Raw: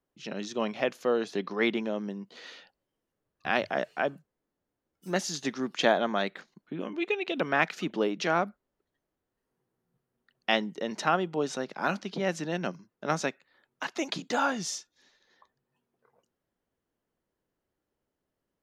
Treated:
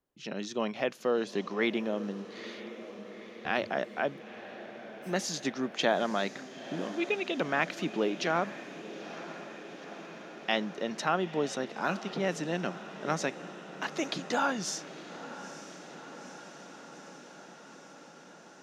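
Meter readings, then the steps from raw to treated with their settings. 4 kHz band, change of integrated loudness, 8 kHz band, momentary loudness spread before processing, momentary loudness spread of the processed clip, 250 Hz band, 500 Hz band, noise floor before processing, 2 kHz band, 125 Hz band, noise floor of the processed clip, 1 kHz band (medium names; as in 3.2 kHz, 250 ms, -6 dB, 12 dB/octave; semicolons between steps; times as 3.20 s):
-1.5 dB, -2.5 dB, -0.5 dB, 12 LU, 18 LU, -1.0 dB, -1.5 dB, -85 dBFS, -2.0 dB, -1.0 dB, -52 dBFS, -2.0 dB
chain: in parallel at -3 dB: peak limiter -19 dBFS, peak gain reduction 12 dB; on the sum: echo that smears into a reverb 923 ms, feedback 74%, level -14 dB; trim -5.5 dB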